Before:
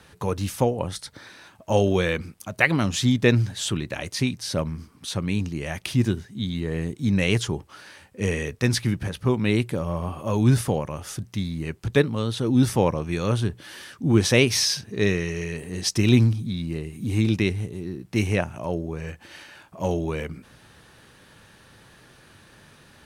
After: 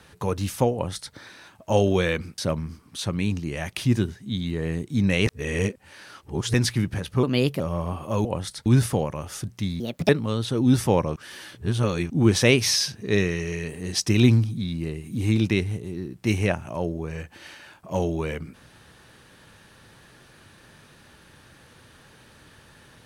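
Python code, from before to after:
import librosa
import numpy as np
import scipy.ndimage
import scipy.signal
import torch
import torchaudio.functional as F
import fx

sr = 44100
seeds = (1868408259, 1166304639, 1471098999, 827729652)

y = fx.edit(x, sr, fx.duplicate(start_s=0.73, length_s=0.41, to_s=10.41),
    fx.cut(start_s=2.38, length_s=2.09),
    fx.reverse_span(start_s=7.36, length_s=1.27),
    fx.speed_span(start_s=9.32, length_s=0.44, speed=1.19),
    fx.speed_span(start_s=11.55, length_s=0.43, speed=1.48),
    fx.reverse_span(start_s=13.05, length_s=0.94), tone=tone)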